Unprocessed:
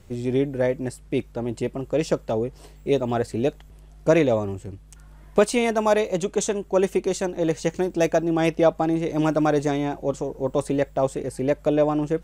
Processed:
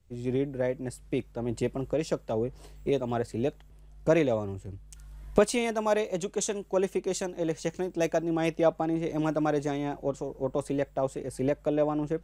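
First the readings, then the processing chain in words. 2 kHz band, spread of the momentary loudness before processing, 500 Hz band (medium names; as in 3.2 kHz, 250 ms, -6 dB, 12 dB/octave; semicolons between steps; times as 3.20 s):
-6.0 dB, 8 LU, -6.0 dB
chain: recorder AGC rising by 12 dB/s; three bands expanded up and down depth 40%; trim -7 dB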